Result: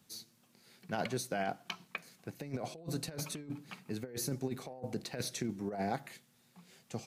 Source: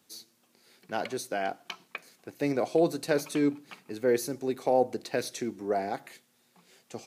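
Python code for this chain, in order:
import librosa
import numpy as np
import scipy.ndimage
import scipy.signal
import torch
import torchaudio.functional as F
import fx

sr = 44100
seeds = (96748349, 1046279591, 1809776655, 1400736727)

y = fx.low_shelf_res(x, sr, hz=230.0, db=7.5, q=1.5)
y = fx.over_compress(y, sr, threshold_db=-31.0, ratio=-0.5)
y = y * 10.0 ** (-5.5 / 20.0)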